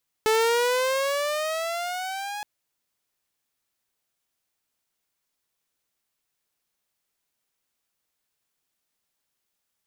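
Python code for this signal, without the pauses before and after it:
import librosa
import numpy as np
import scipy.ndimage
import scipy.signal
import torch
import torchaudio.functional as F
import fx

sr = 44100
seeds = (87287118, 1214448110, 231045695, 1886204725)

y = fx.riser_tone(sr, length_s=2.17, level_db=-15.5, wave='saw', hz=433.0, rise_st=11.5, swell_db=-13)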